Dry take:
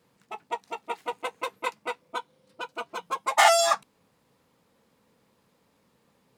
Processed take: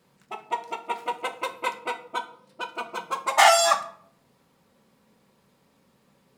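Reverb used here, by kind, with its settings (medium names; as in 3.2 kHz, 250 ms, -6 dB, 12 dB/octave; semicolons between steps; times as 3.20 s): simulated room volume 880 m³, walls furnished, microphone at 1.1 m; trim +2 dB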